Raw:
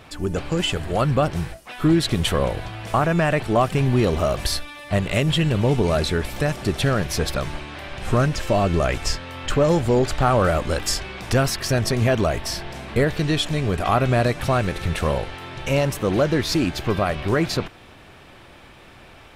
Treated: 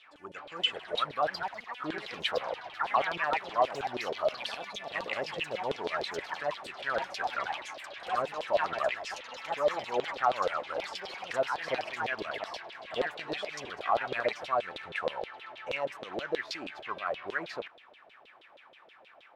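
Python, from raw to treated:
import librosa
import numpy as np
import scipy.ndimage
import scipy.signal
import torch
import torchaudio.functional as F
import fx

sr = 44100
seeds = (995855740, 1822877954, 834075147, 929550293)

y = fx.low_shelf(x, sr, hz=150.0, db=-7.0)
y = fx.filter_lfo_bandpass(y, sr, shape='saw_down', hz=6.3, low_hz=470.0, high_hz=3700.0, q=4.6)
y = fx.echo_pitch(y, sr, ms=471, semitones=4, count=2, db_per_echo=-6.0)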